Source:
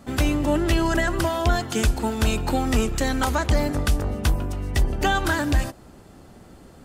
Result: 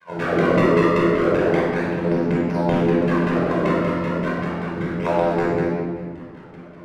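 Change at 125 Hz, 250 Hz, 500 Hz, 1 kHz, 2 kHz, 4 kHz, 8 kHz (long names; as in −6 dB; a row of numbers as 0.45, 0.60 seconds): +0.5 dB, +5.0 dB, +8.0 dB, +2.0 dB, +0.5 dB, −7.5 dB, below −15 dB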